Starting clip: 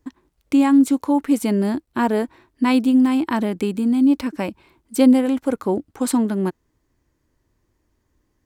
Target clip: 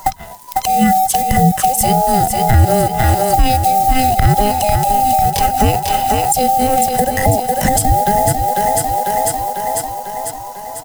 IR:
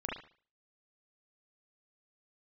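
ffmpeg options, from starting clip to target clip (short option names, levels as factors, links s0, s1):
-filter_complex "[0:a]afftfilt=real='real(if(between(b,1,1008),(2*floor((b-1)/48)+1)*48-b,b),0)':imag='imag(if(between(b,1,1008),(2*floor((b-1)/48)+1)*48-b,b),0)*if(between(b,1,1008),-1,1)':win_size=2048:overlap=0.75,atempo=0.78,acrusher=bits=6:mode=log:mix=0:aa=0.000001,bass=f=250:g=6,treble=f=4000:g=7,acompressor=threshold=0.0316:ratio=4,adynamicequalizer=threshold=0.002:dfrequency=120:dqfactor=1.3:tfrequency=120:tqfactor=1.3:attack=5:release=100:ratio=0.375:range=2:mode=cutabove:tftype=bell,crystalizer=i=1:c=0,asplit=2[s0][s1];[s1]aecho=0:1:497|994|1491|1988|2485|2982|3479:0.355|0.206|0.119|0.0692|0.0402|0.0233|0.0135[s2];[s0][s2]amix=inputs=2:normalize=0,acrossover=split=230[s3][s4];[s4]acompressor=threshold=0.01:ratio=10[s5];[s3][s5]amix=inputs=2:normalize=0,alimiter=level_in=29.9:limit=0.891:release=50:level=0:latency=1,volume=0.891"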